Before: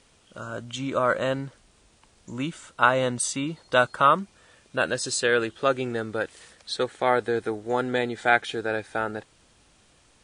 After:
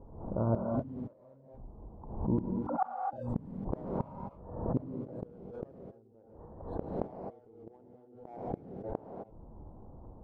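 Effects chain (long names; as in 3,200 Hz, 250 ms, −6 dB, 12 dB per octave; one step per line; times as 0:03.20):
0:02.38–0:03.13: three sine waves on the formant tracks
elliptic low-pass filter 940 Hz, stop band 60 dB
low-shelf EQ 190 Hz +10 dB
mains-hum notches 60/120/180/240 Hz
in parallel at −8 dB: hard clipping −20 dBFS, distortion −13 dB
on the sum: gate with flip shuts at −22 dBFS, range −41 dB
reverb whose tail is shaped and stops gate 290 ms rising, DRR 2 dB
background raised ahead of every attack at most 69 dB per second
level +3 dB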